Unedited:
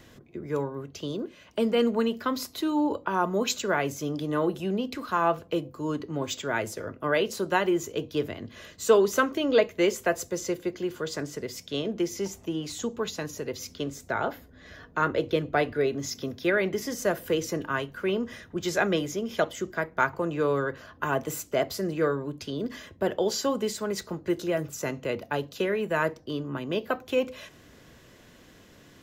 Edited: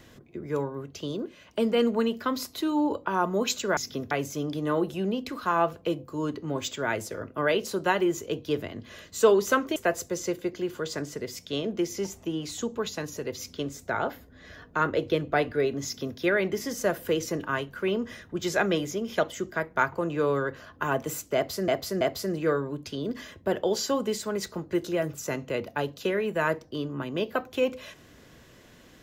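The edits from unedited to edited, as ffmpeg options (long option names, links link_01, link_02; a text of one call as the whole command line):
ffmpeg -i in.wav -filter_complex "[0:a]asplit=6[link_01][link_02][link_03][link_04][link_05][link_06];[link_01]atrim=end=3.772[link_07];[link_02]atrim=start=16.048:end=16.392[link_08];[link_03]atrim=start=3.768:end=9.422[link_09];[link_04]atrim=start=9.968:end=21.892[link_10];[link_05]atrim=start=21.558:end=21.892[link_11];[link_06]atrim=start=21.558[link_12];[link_07][link_08]acrossfade=duration=0.004:curve1=hsin:curve2=hsin[link_13];[link_13][link_09]acrossfade=duration=0.004:curve1=hsin:curve2=hsin[link_14];[link_14][link_10]acrossfade=duration=0.004:curve1=hsin:curve2=hsin[link_15];[link_15][link_11]acrossfade=duration=0.004:curve1=hsin:curve2=hsin[link_16];[link_16][link_12]acrossfade=duration=0.004:curve1=hsin:curve2=hsin" out.wav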